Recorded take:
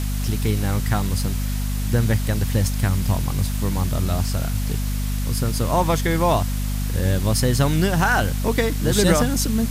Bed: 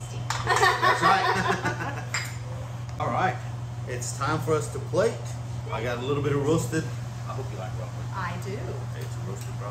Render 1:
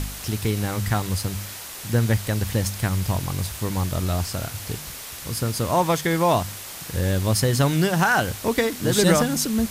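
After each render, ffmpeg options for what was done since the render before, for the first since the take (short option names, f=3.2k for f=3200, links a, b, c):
-af "bandreject=f=50:t=h:w=4,bandreject=f=100:t=h:w=4,bandreject=f=150:t=h:w=4,bandreject=f=200:t=h:w=4,bandreject=f=250:t=h:w=4"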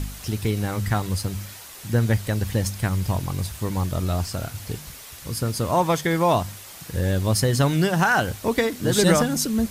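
-af "afftdn=nr=6:nf=-37"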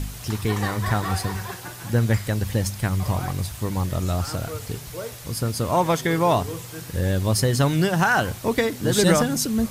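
-filter_complex "[1:a]volume=-10.5dB[a];[0:a][a]amix=inputs=2:normalize=0"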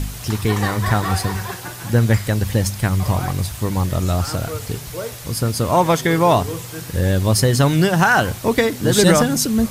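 -af "volume=5dB,alimiter=limit=-1dB:level=0:latency=1"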